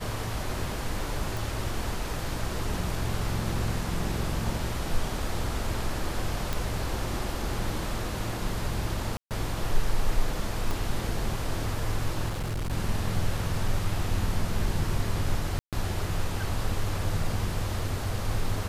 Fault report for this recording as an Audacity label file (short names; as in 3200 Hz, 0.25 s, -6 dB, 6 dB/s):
1.370000	1.370000	pop
6.530000	6.530000	pop
9.170000	9.310000	gap 0.138 s
10.710000	10.710000	pop
12.280000	12.730000	clipped -27.5 dBFS
15.590000	15.730000	gap 0.137 s